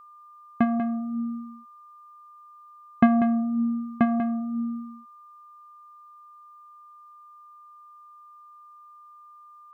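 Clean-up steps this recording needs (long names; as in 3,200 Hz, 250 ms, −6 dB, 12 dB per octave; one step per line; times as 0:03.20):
notch filter 1,200 Hz, Q 30
echo removal 192 ms −9.5 dB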